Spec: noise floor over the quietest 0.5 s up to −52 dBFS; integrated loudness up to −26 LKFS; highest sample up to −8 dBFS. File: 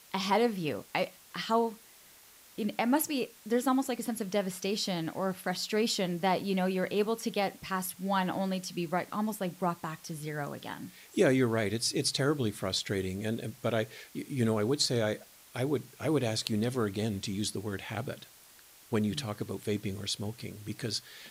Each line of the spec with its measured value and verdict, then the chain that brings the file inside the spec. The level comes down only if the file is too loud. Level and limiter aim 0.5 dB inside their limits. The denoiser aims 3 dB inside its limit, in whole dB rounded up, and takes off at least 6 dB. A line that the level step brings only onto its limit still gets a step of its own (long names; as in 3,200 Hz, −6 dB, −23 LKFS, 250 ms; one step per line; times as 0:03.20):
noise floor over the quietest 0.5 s −57 dBFS: in spec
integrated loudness −32.0 LKFS: in spec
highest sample −13.0 dBFS: in spec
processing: no processing needed